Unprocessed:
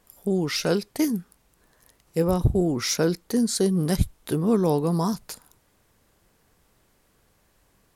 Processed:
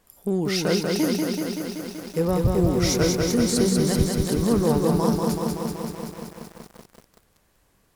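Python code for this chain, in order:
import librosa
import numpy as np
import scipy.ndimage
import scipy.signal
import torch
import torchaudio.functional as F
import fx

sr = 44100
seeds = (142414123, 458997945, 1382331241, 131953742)

p1 = np.clip(x, -10.0 ** (-18.5 / 20.0), 10.0 ** (-18.5 / 20.0))
p2 = x + (p1 * 10.0 ** (-5.0 / 20.0))
p3 = fx.echo_crushed(p2, sr, ms=190, feedback_pct=80, bits=7, wet_db=-3.0)
y = p3 * 10.0 ** (-4.0 / 20.0)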